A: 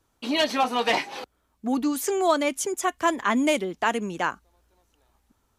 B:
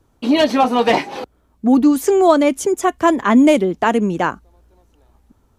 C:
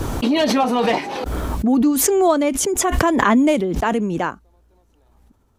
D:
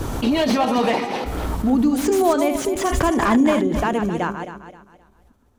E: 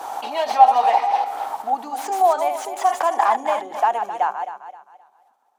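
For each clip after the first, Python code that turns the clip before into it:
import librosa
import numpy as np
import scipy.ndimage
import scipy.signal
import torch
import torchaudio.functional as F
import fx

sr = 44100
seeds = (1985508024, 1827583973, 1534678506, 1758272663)

y1 = fx.tilt_shelf(x, sr, db=6.0, hz=830.0)
y1 = y1 * librosa.db_to_amplitude(8.0)
y2 = fx.pre_swell(y1, sr, db_per_s=21.0)
y2 = y2 * librosa.db_to_amplitude(-4.5)
y3 = fx.reverse_delay_fb(y2, sr, ms=131, feedback_pct=55, wet_db=-7.5)
y3 = fx.slew_limit(y3, sr, full_power_hz=280.0)
y3 = y3 * librosa.db_to_amplitude(-2.0)
y4 = fx.highpass_res(y3, sr, hz=790.0, q=8.5)
y4 = y4 * librosa.db_to_amplitude(-6.0)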